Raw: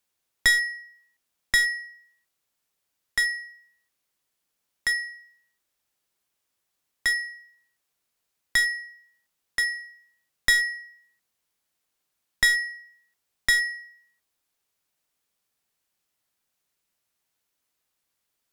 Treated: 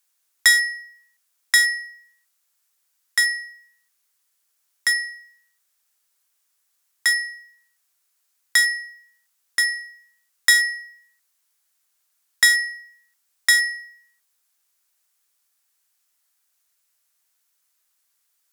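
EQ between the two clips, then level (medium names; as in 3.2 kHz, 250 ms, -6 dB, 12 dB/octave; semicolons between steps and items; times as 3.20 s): tone controls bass -10 dB, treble +15 dB; peaking EQ 1.5 kHz +10 dB 1.9 oct; -5.5 dB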